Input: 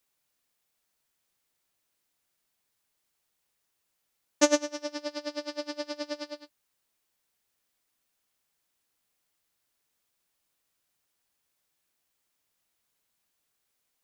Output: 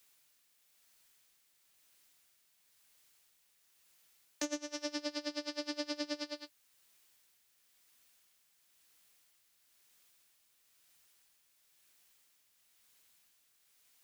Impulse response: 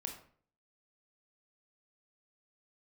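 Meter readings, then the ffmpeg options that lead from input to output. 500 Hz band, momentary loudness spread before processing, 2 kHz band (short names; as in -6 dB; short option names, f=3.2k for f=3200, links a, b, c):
-11.5 dB, 14 LU, -7.5 dB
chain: -filter_complex "[0:a]acrossover=split=280|1500[a][b][c];[c]acontrast=80[d];[a][b][d]amix=inputs=3:normalize=0,tremolo=f=1:d=0.38,alimiter=limit=-18.5dB:level=0:latency=1:release=493,acrossover=split=320[e][f];[f]acompressor=threshold=-42dB:ratio=4[g];[e][g]amix=inputs=2:normalize=0,volume=3.5dB"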